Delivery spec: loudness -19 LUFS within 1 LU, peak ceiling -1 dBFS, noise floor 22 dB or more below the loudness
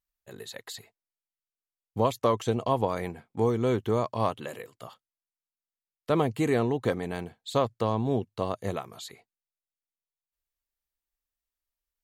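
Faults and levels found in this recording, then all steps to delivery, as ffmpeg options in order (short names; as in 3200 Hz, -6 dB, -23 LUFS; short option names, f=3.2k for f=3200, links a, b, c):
loudness -28.5 LUFS; peak -11.0 dBFS; loudness target -19.0 LUFS
-> -af "volume=9.5dB"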